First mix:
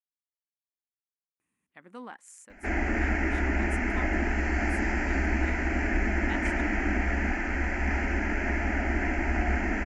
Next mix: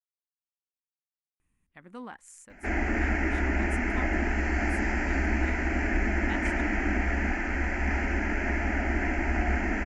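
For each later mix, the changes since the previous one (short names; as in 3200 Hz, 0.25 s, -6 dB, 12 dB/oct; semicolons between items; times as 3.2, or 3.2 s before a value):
speech: remove HPF 220 Hz 12 dB/oct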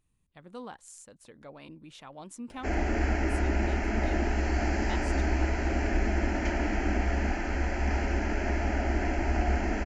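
speech: entry -1.40 s; master: add graphic EQ 125/250/500/2000/4000 Hz +5/-4/+4/-9/+9 dB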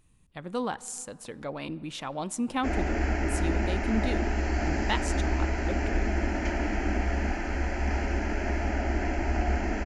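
speech +11.0 dB; reverb: on, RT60 2.9 s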